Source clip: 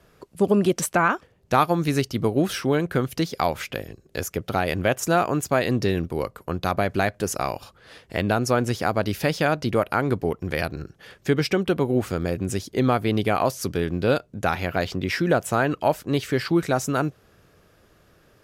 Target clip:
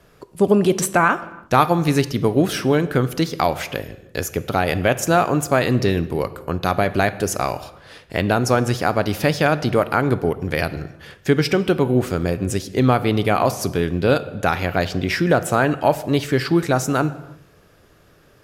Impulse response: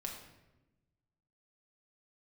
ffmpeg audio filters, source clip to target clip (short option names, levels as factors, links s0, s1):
-filter_complex "[0:a]asplit=2[s0][s1];[1:a]atrim=start_sample=2205,afade=t=out:st=0.3:d=0.01,atrim=end_sample=13671,asetrate=30870,aresample=44100[s2];[s1][s2]afir=irnorm=-1:irlink=0,volume=0.316[s3];[s0][s3]amix=inputs=2:normalize=0,volume=1.26"